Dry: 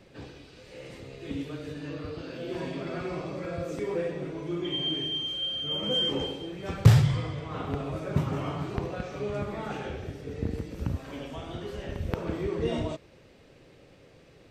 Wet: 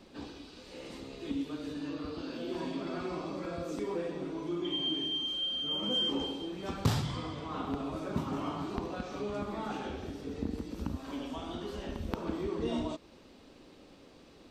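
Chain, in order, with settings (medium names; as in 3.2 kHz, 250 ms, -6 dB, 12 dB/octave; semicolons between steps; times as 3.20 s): graphic EQ 125/250/500/1000/2000/4000 Hz -12/+8/-5/+5/-6/+4 dB; in parallel at +1 dB: compression, threshold -37 dBFS, peak gain reduction 18.5 dB; on the sum: trim -6.5 dB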